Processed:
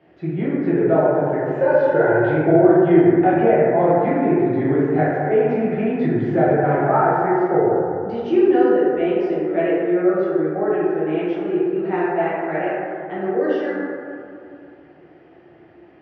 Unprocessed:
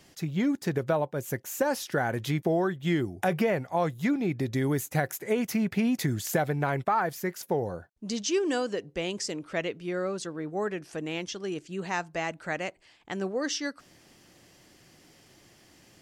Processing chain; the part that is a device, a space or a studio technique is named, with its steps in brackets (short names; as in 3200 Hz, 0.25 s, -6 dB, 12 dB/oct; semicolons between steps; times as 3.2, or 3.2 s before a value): 1.5–2.22 comb 2 ms, depth 65%; bass cabinet (speaker cabinet 88–2300 Hz, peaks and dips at 110 Hz -5 dB, 210 Hz -9 dB, 360 Hz +8 dB, 740 Hz +4 dB, 1100 Hz -6 dB, 2100 Hz -4 dB); plate-style reverb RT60 2.5 s, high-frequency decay 0.3×, DRR -9.5 dB; gain -1 dB